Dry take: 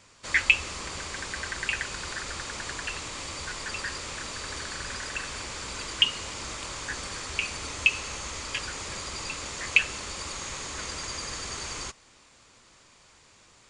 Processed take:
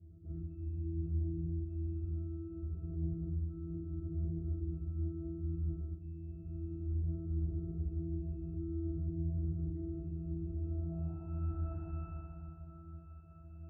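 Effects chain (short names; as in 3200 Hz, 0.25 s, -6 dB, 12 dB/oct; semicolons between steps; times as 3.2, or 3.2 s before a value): gliding pitch shift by -6.5 st starting unshifted; HPF 69 Hz; octave resonator E, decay 0.77 s; FDN reverb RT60 2.5 s, low-frequency decay 0.95×, high-frequency decay 0.75×, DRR -2 dB; reverse; compressor 6:1, threshold -58 dBFS, peak gain reduction 17.5 dB; reverse; RIAA curve playback; low-pass sweep 370 Hz -> 1300 Hz, 10.48–11.53; low shelf 220 Hz +11 dB; gain +5.5 dB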